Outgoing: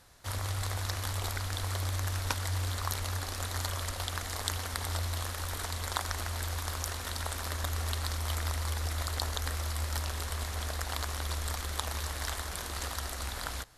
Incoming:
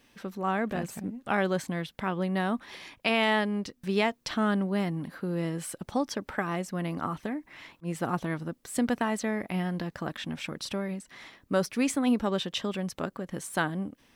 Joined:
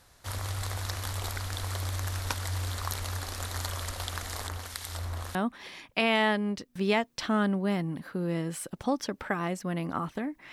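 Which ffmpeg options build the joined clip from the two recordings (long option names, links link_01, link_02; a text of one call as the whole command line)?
ffmpeg -i cue0.wav -i cue1.wav -filter_complex "[0:a]asettb=1/sr,asplit=3[link_01][link_02][link_03];[link_01]atrim=end=4.474[link_04];[link_02]atrim=start=4.47:end=5.35,asetpts=PTS-STARTPTS,afade=type=in:duration=0.004:curve=qsin,afade=type=out:start_time=0.876:duration=0.004:curve=qsin,acrossover=split=1800[link_05][link_06];[link_05]aeval=exprs='val(0)*(1-0.7/2+0.7/2*cos(2*PI*1.5*n/s))':channel_layout=same[link_07];[link_06]aeval=exprs='val(0)*(1-0.7/2-0.7/2*cos(2*PI*1.5*n/s))':channel_layout=same[link_08];[link_07][link_08]amix=inputs=2:normalize=0[link_09];[link_03]atrim=start=5.346[link_10];[link_04][link_09]acrossfade=duration=0.004:curve1=hsin:curve2=qsin[link_11];[link_11][link_10]acrossfade=duration=0.004:curve1=qsin:curve2=hsin,apad=whole_dur=10.52,atrim=end=10.52,atrim=end=5.352[link_12];[1:a]atrim=start=2.428:end=7.6[link_13];[link_12][link_13]acrossfade=duration=0.004:curve1=hsin:curve2=hsin" out.wav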